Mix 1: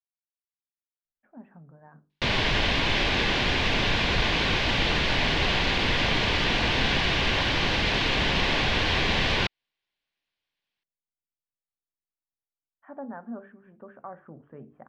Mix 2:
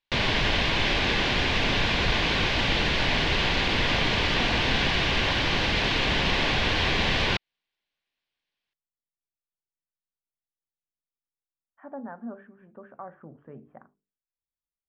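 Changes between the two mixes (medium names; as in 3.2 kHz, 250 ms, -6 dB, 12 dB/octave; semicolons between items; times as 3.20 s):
speech: entry -1.05 s; background: entry -2.10 s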